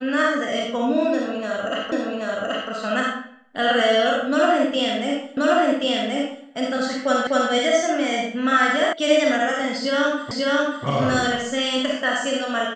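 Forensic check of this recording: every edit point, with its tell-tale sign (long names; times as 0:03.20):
0:01.92: the same again, the last 0.78 s
0:05.37: the same again, the last 1.08 s
0:07.27: the same again, the last 0.25 s
0:08.93: cut off before it has died away
0:10.31: the same again, the last 0.54 s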